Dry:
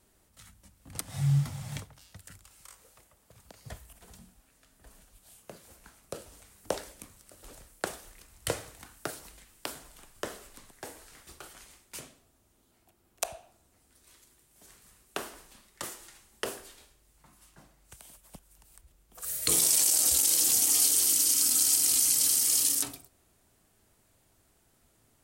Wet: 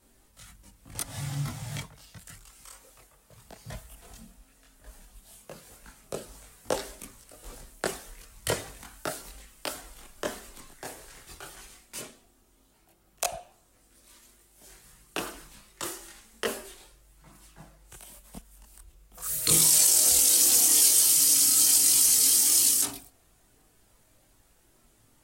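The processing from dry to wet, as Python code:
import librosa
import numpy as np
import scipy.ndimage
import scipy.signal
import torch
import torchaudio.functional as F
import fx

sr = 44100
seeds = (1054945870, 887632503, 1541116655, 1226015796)

y = fx.chorus_voices(x, sr, voices=6, hz=0.12, base_ms=22, depth_ms=4.3, mix_pct=55)
y = y * 10.0 ** (7.0 / 20.0)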